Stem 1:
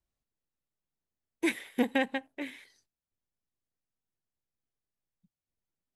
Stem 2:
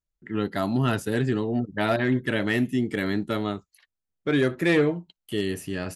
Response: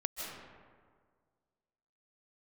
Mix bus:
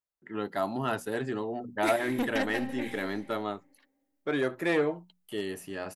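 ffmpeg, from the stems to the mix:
-filter_complex "[0:a]asoftclip=type=tanh:threshold=-24.5dB,adelay=400,volume=-2.5dB,asplit=3[a][b][c];[b]volume=-5.5dB[d];[c]volume=-15dB[e];[1:a]highpass=f=180:p=1,equalizer=f=820:t=o:w=1.8:g=9.5,bandreject=f=60:t=h:w=6,bandreject=f=120:t=h:w=6,bandreject=f=180:t=h:w=6,bandreject=f=240:t=h:w=6,volume=-9dB[f];[2:a]atrim=start_sample=2205[g];[d][g]afir=irnorm=-1:irlink=0[h];[e]aecho=0:1:216:1[i];[a][f][h][i]amix=inputs=4:normalize=0,highshelf=f=9.9k:g=7"

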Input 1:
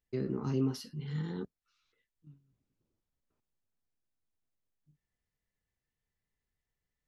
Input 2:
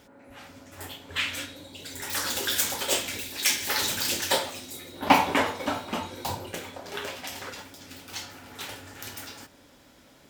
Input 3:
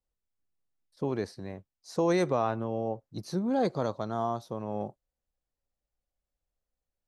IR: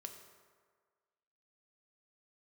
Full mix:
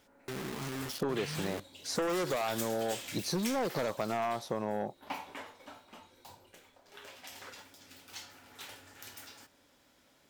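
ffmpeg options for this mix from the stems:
-filter_complex "[0:a]alimiter=level_in=8dB:limit=-24dB:level=0:latency=1:release=15,volume=-8dB,acrusher=bits=6:mix=0:aa=0.000001,adelay=150,volume=3dB[a];[1:a]volume=2.5dB,afade=t=out:st=3.48:d=0.42:silence=0.266073,afade=t=in:st=6.85:d=0.6:silence=0.281838[b];[2:a]equalizer=f=100:w=1.5:g=-5.5,aeval=exprs='0.168*(cos(1*acos(clip(val(0)/0.168,-1,1)))-cos(1*PI/2))+0.0596*(cos(5*acos(clip(val(0)/0.168,-1,1)))-cos(5*PI/2))':c=same,volume=1dB[c];[a][b][c]amix=inputs=3:normalize=0,lowshelf=f=420:g=-5.5,acompressor=threshold=-29dB:ratio=12"

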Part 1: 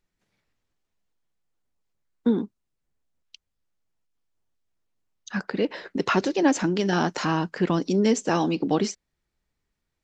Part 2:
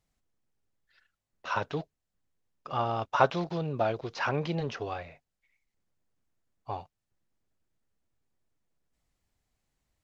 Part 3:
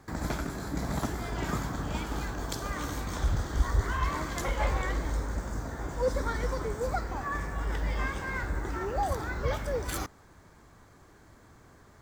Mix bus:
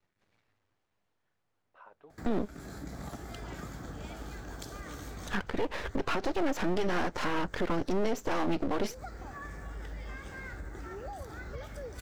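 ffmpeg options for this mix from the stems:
-filter_complex "[0:a]equalizer=f=100:t=o:w=0.77:g=12.5,asplit=2[a][b];[b]highpass=f=720:p=1,volume=18dB,asoftclip=type=tanh:threshold=-8.5dB[c];[a][c]amix=inputs=2:normalize=0,lowpass=f=1.1k:p=1,volume=-6dB,aeval=exprs='max(val(0),0)':c=same,volume=0dB,asplit=2[d][e];[1:a]highpass=330,acompressor=threshold=-32dB:ratio=6,lowpass=1.5k,adelay=300,volume=-17.5dB[f];[2:a]acompressor=threshold=-32dB:ratio=4,equalizer=f=1k:w=6.2:g=-10,adelay=2100,volume=-6dB[g];[e]apad=whole_len=622545[h];[g][h]sidechaincompress=threshold=-32dB:ratio=8:attack=26:release=226[i];[d][f][i]amix=inputs=3:normalize=0,alimiter=limit=-19.5dB:level=0:latency=1:release=184"

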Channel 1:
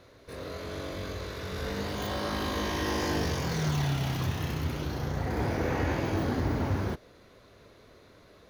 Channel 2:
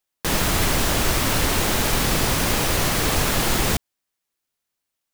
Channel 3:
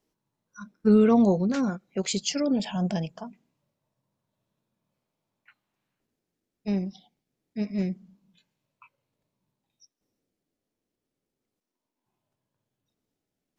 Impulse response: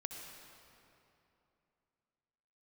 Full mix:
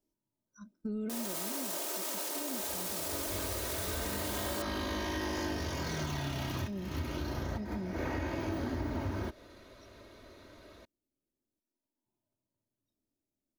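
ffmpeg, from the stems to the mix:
-filter_complex "[0:a]adelay=2350,volume=0.5dB[a];[1:a]highpass=f=400:w=0.5412,highpass=f=400:w=1.3066,adelay=850,volume=1.5dB[b];[2:a]volume=-5dB,asplit=2[c][d];[d]apad=whole_len=478446[e];[a][e]sidechaincompress=threshold=-44dB:ratio=8:attack=20:release=157[f];[b][c]amix=inputs=2:normalize=0,equalizer=f=2k:w=0.46:g=-11.5,alimiter=level_in=2.5dB:limit=-24dB:level=0:latency=1,volume=-2.5dB,volume=0dB[g];[f][g]amix=inputs=2:normalize=0,aecho=1:1:3.2:0.49,acompressor=threshold=-33dB:ratio=4"

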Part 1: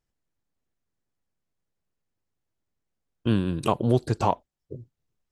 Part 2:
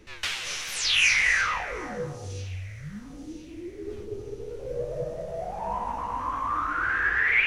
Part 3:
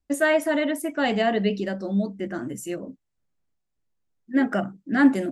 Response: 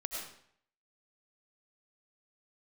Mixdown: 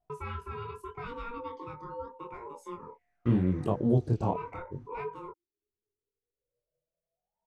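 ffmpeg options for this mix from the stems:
-filter_complex "[0:a]equalizer=f=2.1k:w=0.45:g=-13.5,volume=2dB,asplit=2[a][b];[1:a]adelay=1750,volume=-12.5dB[c];[2:a]acompressor=threshold=-37dB:ratio=2.5,aeval=exprs='val(0)*sin(2*PI*710*n/s)':c=same,volume=1.5dB[d];[b]apad=whole_len=406576[e];[c][e]sidechaingate=range=-42dB:threshold=-45dB:ratio=16:detection=peak[f];[a][f][d]amix=inputs=3:normalize=0,flanger=delay=20:depth=6.5:speed=0.81,lowpass=f=1.7k:p=1"

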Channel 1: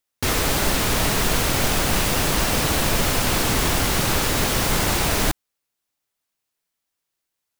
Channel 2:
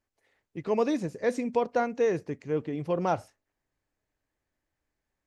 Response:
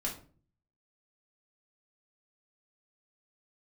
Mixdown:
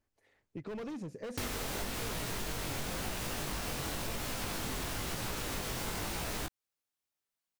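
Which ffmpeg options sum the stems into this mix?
-filter_complex "[0:a]flanger=delay=16.5:depth=6.3:speed=0.97,adelay=1150,volume=-6.5dB[a];[1:a]volume=30.5dB,asoftclip=hard,volume=-30.5dB,lowshelf=f=350:g=5,acompressor=threshold=-39dB:ratio=5,volume=-1dB[b];[a][b]amix=inputs=2:normalize=0,acompressor=threshold=-34dB:ratio=6"

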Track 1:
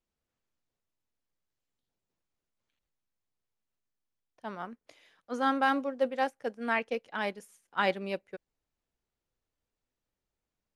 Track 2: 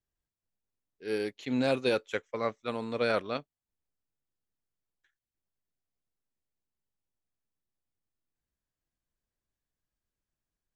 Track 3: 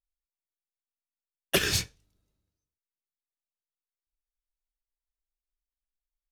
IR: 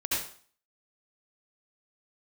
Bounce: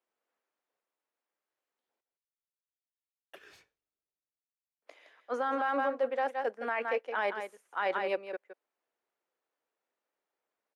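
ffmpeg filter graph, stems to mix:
-filter_complex "[0:a]highpass=200,acontrast=68,volume=-1dB,asplit=3[a][b][c];[a]atrim=end=2.01,asetpts=PTS-STARTPTS,afade=t=out:st=2.006:d=0.004:c=hsin[d];[b]atrim=start=2.01:end=4.82,asetpts=PTS-STARTPTS,volume=0[e];[c]atrim=start=4.82,asetpts=PTS-STARTPTS,afade=t=in:d=0.004:c=hsin[f];[d][e][f]concat=n=3:v=0:a=1,asplit=2[g][h];[h]volume=-10.5dB[i];[2:a]bass=f=250:g=-2,treble=f=4k:g=-4,acompressor=threshold=-32dB:ratio=12,adelay=1800,volume=-14dB[j];[i]aecho=0:1:166:1[k];[g][j][k]amix=inputs=3:normalize=0,acrossover=split=350 2400:gain=0.0891 1 0.251[l][m][n];[l][m][n]amix=inputs=3:normalize=0,alimiter=limit=-21.5dB:level=0:latency=1:release=27"

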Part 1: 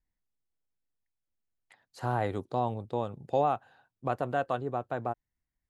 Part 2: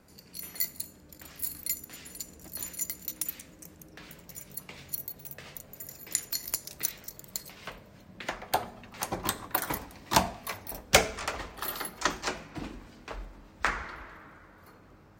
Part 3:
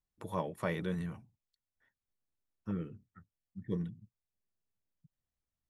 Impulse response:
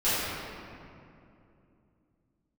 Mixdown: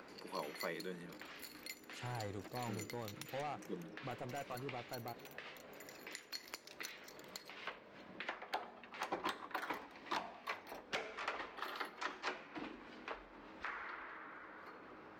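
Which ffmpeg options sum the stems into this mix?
-filter_complex "[0:a]equalizer=f=6.8k:w=1.5:g=7,asoftclip=type=tanh:threshold=-26.5dB,volume=-9.5dB[a];[1:a]acrossover=split=270 4100:gain=0.0794 1 0.0708[b][c][d];[b][c][d]amix=inputs=3:normalize=0,alimiter=limit=-12.5dB:level=0:latency=1:release=412,acompressor=mode=upward:threshold=-41dB:ratio=2.5,volume=-3.5dB[e];[2:a]highpass=f=240:w=0.5412,highpass=f=240:w=1.3066,volume=-5.5dB[f];[a][e][f]amix=inputs=3:normalize=0,equalizer=f=650:w=1.9:g=-3.5,alimiter=level_in=3.5dB:limit=-24dB:level=0:latency=1:release=228,volume=-3.5dB"

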